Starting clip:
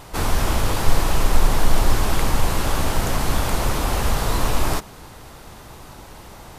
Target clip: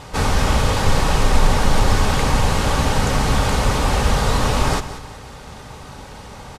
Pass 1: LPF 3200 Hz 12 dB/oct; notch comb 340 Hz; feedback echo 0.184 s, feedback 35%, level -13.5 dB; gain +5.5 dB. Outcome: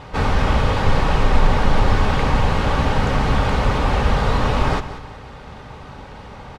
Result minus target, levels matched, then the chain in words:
8000 Hz band -12.5 dB
LPF 8100 Hz 12 dB/oct; notch comb 340 Hz; feedback echo 0.184 s, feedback 35%, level -13.5 dB; gain +5.5 dB

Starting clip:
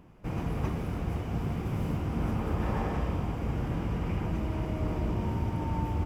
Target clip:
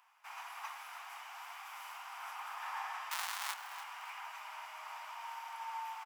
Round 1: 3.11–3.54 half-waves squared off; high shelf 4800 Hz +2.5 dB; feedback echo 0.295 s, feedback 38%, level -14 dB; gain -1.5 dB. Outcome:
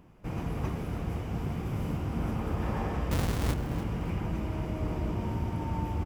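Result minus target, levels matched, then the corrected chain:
1000 Hz band -9.0 dB
3.11–3.54 half-waves squared off; steep high-pass 840 Hz 48 dB/oct; high shelf 4800 Hz +2.5 dB; feedback echo 0.295 s, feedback 38%, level -14 dB; gain -1.5 dB

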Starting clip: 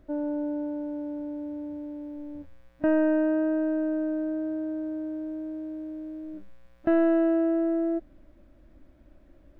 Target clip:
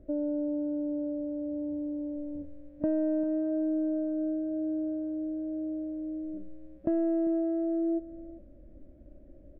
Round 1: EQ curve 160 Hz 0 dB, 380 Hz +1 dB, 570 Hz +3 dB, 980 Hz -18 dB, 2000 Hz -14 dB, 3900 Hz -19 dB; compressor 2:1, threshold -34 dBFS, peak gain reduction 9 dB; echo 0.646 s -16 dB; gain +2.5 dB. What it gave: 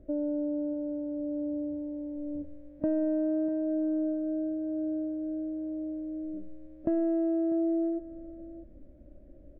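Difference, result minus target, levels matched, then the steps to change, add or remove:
echo 0.25 s late
change: echo 0.396 s -16 dB

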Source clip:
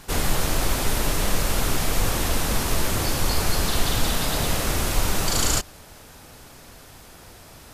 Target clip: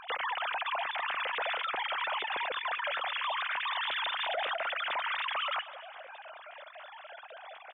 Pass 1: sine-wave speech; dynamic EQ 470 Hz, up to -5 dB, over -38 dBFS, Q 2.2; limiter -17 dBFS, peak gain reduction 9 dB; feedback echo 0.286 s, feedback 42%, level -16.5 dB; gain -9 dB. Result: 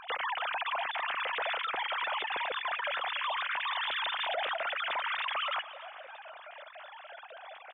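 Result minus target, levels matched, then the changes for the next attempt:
echo 80 ms late
change: feedback echo 0.206 s, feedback 42%, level -16.5 dB

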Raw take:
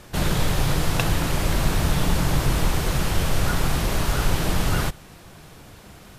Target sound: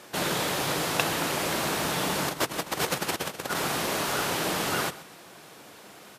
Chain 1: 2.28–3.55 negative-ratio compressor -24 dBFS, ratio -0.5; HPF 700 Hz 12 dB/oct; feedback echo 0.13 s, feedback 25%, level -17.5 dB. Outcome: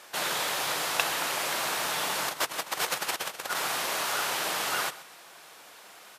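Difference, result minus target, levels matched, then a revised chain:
250 Hz band -11.5 dB
2.28–3.55 negative-ratio compressor -24 dBFS, ratio -0.5; HPF 290 Hz 12 dB/oct; feedback echo 0.13 s, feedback 25%, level -17.5 dB

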